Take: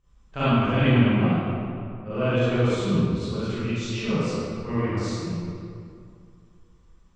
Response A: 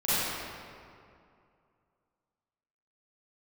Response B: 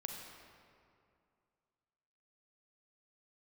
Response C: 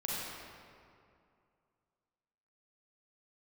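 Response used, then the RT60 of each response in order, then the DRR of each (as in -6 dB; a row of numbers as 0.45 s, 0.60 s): A; 2.4 s, 2.4 s, 2.4 s; -15.0 dB, 1.5 dB, -6.5 dB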